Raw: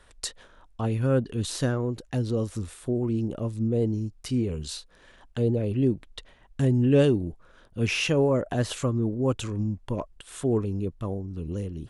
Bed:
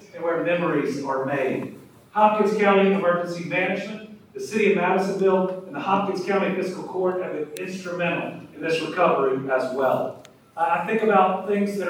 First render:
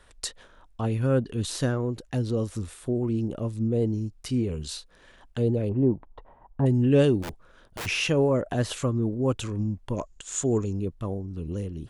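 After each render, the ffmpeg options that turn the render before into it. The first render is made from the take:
-filter_complex "[0:a]asettb=1/sr,asplit=3[a][b][c];[a]atrim=end=5.694[d];[b]atrim=start=5.69:end=6.66,asetpts=PTS-STARTPTS,afade=t=in:d=0.004:c=qsin,afade=t=out:st=0.966:d=0.004:c=qsin,lowpass=f=910:t=q:w=4[e];[c]atrim=start=6.656[f];[d][e]acrossfade=d=0.004:c1=hsin:c2=qsin[g];[g][f]acrossfade=d=0.004:c1=qsin:c2=hsin,asplit=3[h][i][j];[h]afade=t=out:st=7.22:d=0.02[k];[i]aeval=exprs='(mod(28.2*val(0)+1,2)-1)/28.2':c=same,afade=t=in:st=7.22:d=0.02,afade=t=out:st=7.85:d=0.02[l];[j]afade=t=in:st=7.85:d=0.02[m];[k][l][m]amix=inputs=3:normalize=0,asettb=1/sr,asplit=3[n][o][p];[n]atrim=end=9.964[q];[o]atrim=start=9.96:end=10.73,asetpts=PTS-STARTPTS,afade=t=in:d=0.004:c=qsin,afade=t=out:st=0.766:d=0.004:c=qsin,lowpass=f=6.9k:t=q:w=11[r];[p]atrim=start=10.726[s];[q][r]acrossfade=d=0.004:c1=hsin:c2=qsin[t];[t][s]acrossfade=d=0.004:c1=qsin:c2=hsin"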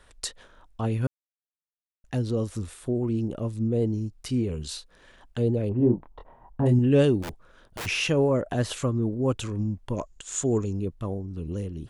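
-filter_complex "[0:a]asettb=1/sr,asplit=3[a][b][c];[a]atrim=end=5.774[d];[b]atrim=start=5.77:end=6.79,asetpts=PTS-STARTPTS,afade=t=in:d=0.004:c=qsin,afade=t=out:st=1.016:d=0.004:c=qsin,asplit=2[e][f];[f]adelay=25,volume=-4dB[g];[e][g]amix=inputs=2:normalize=0,atrim=end_sample=44982[h];[c]atrim=start=6.786[i];[d][h]acrossfade=d=0.004:c1=hsin:c2=qsin[j];[j][i]acrossfade=d=0.004:c1=qsin:c2=hsin,asplit=3[k][l][m];[k]atrim=end=1.07,asetpts=PTS-STARTPTS,afade=t=out:st=1.066:d=0.004:c=hsin[n];[l]atrim=start=1.07:end=2.04,asetpts=PTS-STARTPTS,volume=0[o];[m]atrim=start=2.04,asetpts=PTS-STARTPTS,afade=t=in:d=0.004:c=hsin[p];[n][o][p]concat=n=3:v=0:a=1"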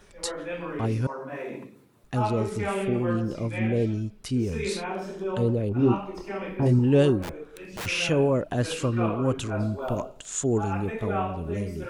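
-filter_complex "[1:a]volume=-11.5dB[a];[0:a][a]amix=inputs=2:normalize=0"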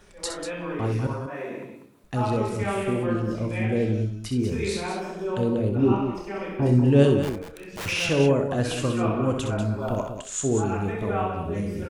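-filter_complex "[0:a]asplit=2[a][b];[b]adelay=29,volume=-13dB[c];[a][c]amix=inputs=2:normalize=0,aecho=1:1:64.14|192.4:0.447|0.398"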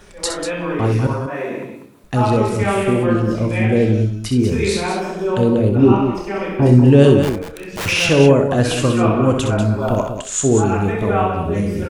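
-af "volume=9dB,alimiter=limit=-1dB:level=0:latency=1"

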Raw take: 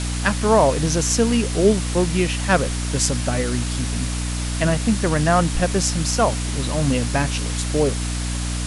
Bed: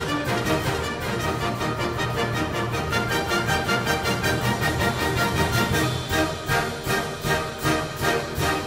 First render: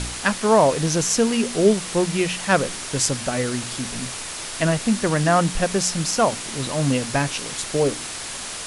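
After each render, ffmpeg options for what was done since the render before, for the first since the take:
-af "bandreject=f=60:t=h:w=4,bandreject=f=120:t=h:w=4,bandreject=f=180:t=h:w=4,bandreject=f=240:t=h:w=4,bandreject=f=300:t=h:w=4"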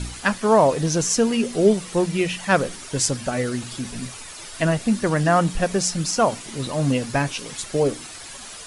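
-af "afftdn=nr=10:nf=-32"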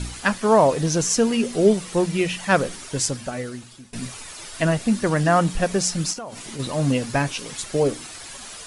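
-filter_complex "[0:a]asplit=3[a][b][c];[a]afade=t=out:st=6.12:d=0.02[d];[b]acompressor=threshold=-30dB:ratio=10:attack=3.2:release=140:knee=1:detection=peak,afade=t=in:st=6.12:d=0.02,afade=t=out:st=6.58:d=0.02[e];[c]afade=t=in:st=6.58:d=0.02[f];[d][e][f]amix=inputs=3:normalize=0,asplit=2[g][h];[g]atrim=end=3.93,asetpts=PTS-STARTPTS,afade=t=out:st=2.79:d=1.14:silence=0.0944061[i];[h]atrim=start=3.93,asetpts=PTS-STARTPTS,afade=t=in:d=0.004:c=hsin:silence=0.0944061[j];[i][j]concat=n=2:v=0:a=1"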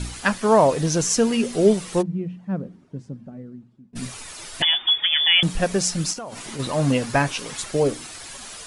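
-filter_complex "[0:a]asplit=3[a][b][c];[a]afade=t=out:st=2.01:d=0.02[d];[b]bandpass=f=190:t=q:w=2.2,afade=t=in:st=2.01:d=0.02,afade=t=out:st=3.95:d=0.02[e];[c]afade=t=in:st=3.95:d=0.02[f];[d][e][f]amix=inputs=3:normalize=0,asettb=1/sr,asplit=3[g][h][i];[g]atrim=end=4.624[j];[h]atrim=start=4.62:end=5.43,asetpts=PTS-STARTPTS,afade=t=in:d=0.004:c=qsin,afade=t=out:st=0.806:d=0.004:c=qsin,lowpass=f=3.1k:t=q:w=0.5098,lowpass=f=3.1k:t=q:w=0.6013,lowpass=f=3.1k:t=q:w=0.9,lowpass=f=3.1k:t=q:w=2.563,afreqshift=-3600[k];[i]atrim=start=5.426[l];[j][k]acrossfade=d=0.004:c1=hsin:c2=qsin[m];[m][l]acrossfade=d=0.004:c1=qsin:c2=hsin,asettb=1/sr,asplit=3[n][o][p];[n]atrim=end=6.314[q];[o]atrim=start=6.31:end=7.71,asetpts=PTS-STARTPTS,afade=t=in:d=0.004:c=qsin,afade=t=out:st=1.396:d=0.004:c=qsin,equalizer=f=1.1k:w=0.61:g=4[r];[p]atrim=start=7.706[s];[q][r]acrossfade=d=0.004:c1=hsin:c2=qsin[t];[t][s]acrossfade=d=0.004:c1=qsin:c2=hsin"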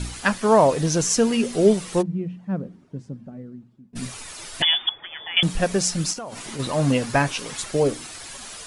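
-filter_complex "[0:a]asettb=1/sr,asplit=3[a][b][c];[a]atrim=end=4.894[d];[b]atrim=start=4.89:end=5.37,asetpts=PTS-STARTPTS,afade=t=in:d=0.004:c=qsin,afade=t=out:st=0.476:d=0.004:c=qsin,lowpass=1.1k[e];[c]atrim=start=5.366[f];[d][e]acrossfade=d=0.004:c1=hsin:c2=qsin[g];[g][f]acrossfade=d=0.004:c1=qsin:c2=hsin"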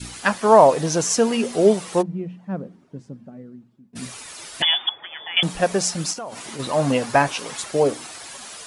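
-af "highpass=f=170:p=1,adynamicequalizer=threshold=0.02:dfrequency=790:dqfactor=1:tfrequency=790:tqfactor=1:attack=5:release=100:ratio=0.375:range=3:mode=boostabove:tftype=bell"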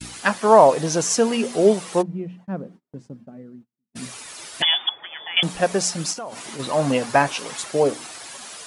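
-af "lowshelf=f=66:g=-10,agate=range=-30dB:threshold=-44dB:ratio=16:detection=peak"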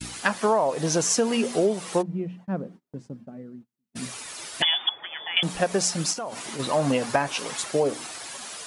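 -af "acompressor=threshold=-18dB:ratio=12"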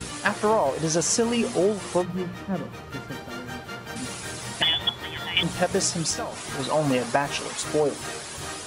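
-filter_complex "[1:a]volume=-14dB[a];[0:a][a]amix=inputs=2:normalize=0"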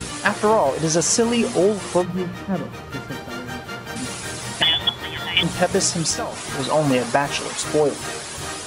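-af "volume=4.5dB,alimiter=limit=-2dB:level=0:latency=1"

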